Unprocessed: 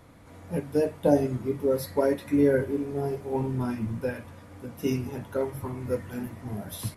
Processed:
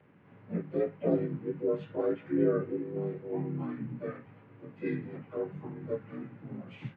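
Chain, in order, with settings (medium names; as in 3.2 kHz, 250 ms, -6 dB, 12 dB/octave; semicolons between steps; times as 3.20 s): frequency axis rescaled in octaves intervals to 86%; cabinet simulation 100–2400 Hz, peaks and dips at 170 Hz +8 dB, 410 Hz +3 dB, 650 Hz -7 dB, 2.1 kHz +10 dB; harmony voices +4 st -5 dB; trim -7.5 dB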